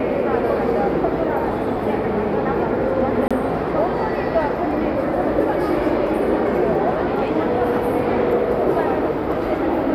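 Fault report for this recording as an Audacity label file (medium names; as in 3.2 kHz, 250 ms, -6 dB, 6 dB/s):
3.280000	3.310000	dropout 26 ms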